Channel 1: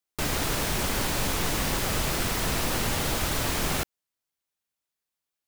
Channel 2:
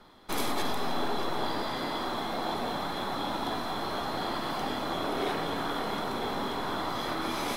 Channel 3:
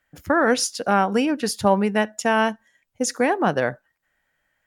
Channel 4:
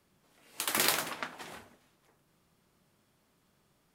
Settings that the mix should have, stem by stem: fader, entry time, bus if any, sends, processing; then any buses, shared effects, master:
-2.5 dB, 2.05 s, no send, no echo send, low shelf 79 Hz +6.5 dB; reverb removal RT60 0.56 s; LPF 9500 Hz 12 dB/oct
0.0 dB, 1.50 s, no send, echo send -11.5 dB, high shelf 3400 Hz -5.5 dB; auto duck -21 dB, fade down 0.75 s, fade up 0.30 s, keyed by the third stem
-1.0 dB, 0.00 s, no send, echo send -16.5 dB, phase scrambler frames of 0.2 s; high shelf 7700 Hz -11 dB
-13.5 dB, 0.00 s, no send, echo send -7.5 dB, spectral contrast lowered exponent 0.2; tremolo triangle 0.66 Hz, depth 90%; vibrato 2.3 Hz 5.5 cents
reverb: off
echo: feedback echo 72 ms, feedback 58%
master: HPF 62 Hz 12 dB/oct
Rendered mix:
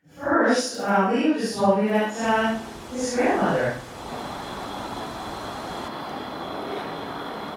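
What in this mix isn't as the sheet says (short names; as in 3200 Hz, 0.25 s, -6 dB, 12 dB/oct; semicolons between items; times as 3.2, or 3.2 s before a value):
stem 1 -2.5 dB -> -13.5 dB; stem 4 -13.5 dB -> -20.5 dB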